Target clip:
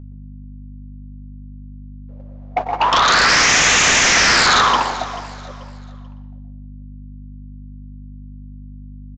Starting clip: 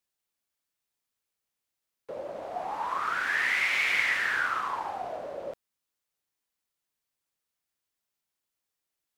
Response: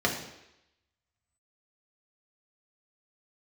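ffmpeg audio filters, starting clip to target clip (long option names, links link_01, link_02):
-filter_complex "[0:a]agate=range=-47dB:threshold=-30dB:ratio=16:detection=peak,highshelf=frequency=5500:gain=-10.5,asplit=2[link_01][link_02];[link_02]acompressor=threshold=-42dB:ratio=6,volume=0dB[link_03];[link_01][link_03]amix=inputs=2:normalize=0,aeval=exprs='0.251*sin(PI/2*8.91*val(0)/0.251)':channel_layout=same,aeval=exprs='val(0)+0.0178*(sin(2*PI*50*n/s)+sin(2*PI*2*50*n/s)/2+sin(2*PI*3*50*n/s)/3+sin(2*PI*4*50*n/s)/4+sin(2*PI*5*50*n/s)/5)':channel_layout=same,asplit=2[link_04][link_05];[link_05]adelay=12,volume=-13dB[link_06];[link_04][link_06]amix=inputs=2:normalize=0,aecho=1:1:437|874|1311:0.141|0.0438|0.0136,asplit=2[link_07][link_08];[1:a]atrim=start_sample=2205,adelay=118[link_09];[link_08][link_09]afir=irnorm=-1:irlink=0,volume=-19.5dB[link_10];[link_07][link_10]amix=inputs=2:normalize=0,aresample=16000,aresample=44100,volume=1.5dB"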